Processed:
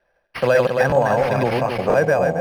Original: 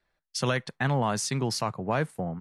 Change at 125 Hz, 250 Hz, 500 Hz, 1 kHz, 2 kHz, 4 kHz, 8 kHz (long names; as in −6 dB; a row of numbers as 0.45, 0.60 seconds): +4.0 dB, +5.5 dB, +16.0 dB, +9.5 dB, +10.5 dB, −0.5 dB, can't be measured